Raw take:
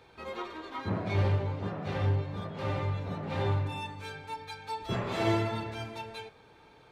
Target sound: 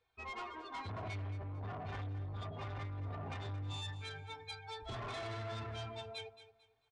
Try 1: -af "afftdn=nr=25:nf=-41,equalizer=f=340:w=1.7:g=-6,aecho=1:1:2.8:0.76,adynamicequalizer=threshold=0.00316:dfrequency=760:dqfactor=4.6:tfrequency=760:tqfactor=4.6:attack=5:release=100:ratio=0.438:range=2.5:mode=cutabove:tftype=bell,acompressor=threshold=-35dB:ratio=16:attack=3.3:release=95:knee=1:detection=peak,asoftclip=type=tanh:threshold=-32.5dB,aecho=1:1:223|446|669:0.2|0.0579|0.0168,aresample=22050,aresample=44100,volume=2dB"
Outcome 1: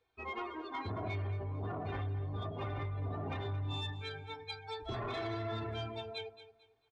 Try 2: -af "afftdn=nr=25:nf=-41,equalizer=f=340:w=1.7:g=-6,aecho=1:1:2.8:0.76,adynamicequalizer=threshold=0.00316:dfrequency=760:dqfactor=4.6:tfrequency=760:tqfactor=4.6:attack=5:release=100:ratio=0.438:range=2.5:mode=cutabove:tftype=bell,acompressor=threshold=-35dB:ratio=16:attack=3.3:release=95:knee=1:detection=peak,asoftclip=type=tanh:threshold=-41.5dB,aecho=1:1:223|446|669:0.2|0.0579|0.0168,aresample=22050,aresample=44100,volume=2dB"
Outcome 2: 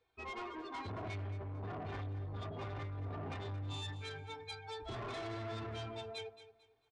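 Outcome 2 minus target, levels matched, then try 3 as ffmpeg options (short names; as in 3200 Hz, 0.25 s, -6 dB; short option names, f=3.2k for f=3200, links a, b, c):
250 Hz band +3.0 dB
-af "afftdn=nr=25:nf=-41,equalizer=f=340:w=1.7:g=-15,aecho=1:1:2.8:0.76,adynamicequalizer=threshold=0.00316:dfrequency=760:dqfactor=4.6:tfrequency=760:tqfactor=4.6:attack=5:release=100:ratio=0.438:range=2.5:mode=cutabove:tftype=bell,acompressor=threshold=-35dB:ratio=16:attack=3.3:release=95:knee=1:detection=peak,asoftclip=type=tanh:threshold=-41.5dB,aecho=1:1:223|446|669:0.2|0.0579|0.0168,aresample=22050,aresample=44100,volume=2dB"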